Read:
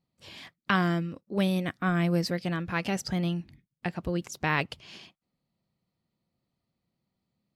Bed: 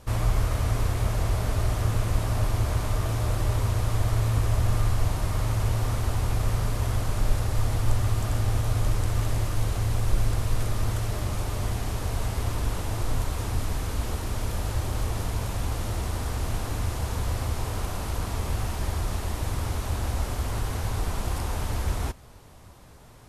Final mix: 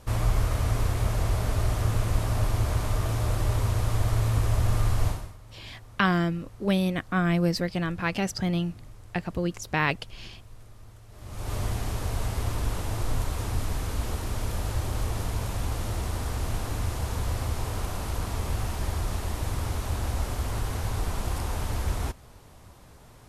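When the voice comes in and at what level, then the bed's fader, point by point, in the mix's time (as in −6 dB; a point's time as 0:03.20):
5.30 s, +2.0 dB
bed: 0:05.09 −0.5 dB
0:05.38 −22.5 dB
0:11.07 −22.5 dB
0:11.52 −1 dB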